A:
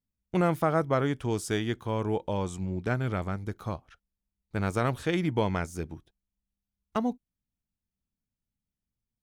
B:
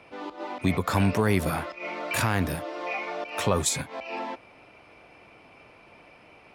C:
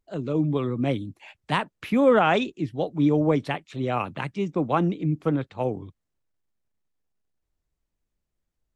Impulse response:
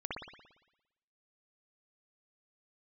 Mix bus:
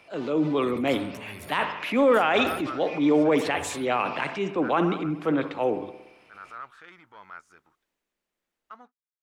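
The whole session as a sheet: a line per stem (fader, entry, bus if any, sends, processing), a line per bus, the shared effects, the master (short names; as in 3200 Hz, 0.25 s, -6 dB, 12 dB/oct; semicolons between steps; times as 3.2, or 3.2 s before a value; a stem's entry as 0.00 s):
-7.5 dB, 1.75 s, no send, sample leveller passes 1; band-pass 1300 Hz, Q 4.6
-8.0 dB, 0.00 s, send -11 dB, limiter -22.5 dBFS, peak gain reduction 11 dB; auto duck -10 dB, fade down 0.65 s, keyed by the third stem
+2.5 dB, 0.00 s, send -14 dB, three-band isolator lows -21 dB, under 230 Hz, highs -12 dB, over 3000 Hz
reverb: on, RT60 0.95 s, pre-delay 57 ms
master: high shelf 2100 Hz +10.5 dB; transient shaper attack -5 dB, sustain +3 dB; limiter -12 dBFS, peak gain reduction 9.5 dB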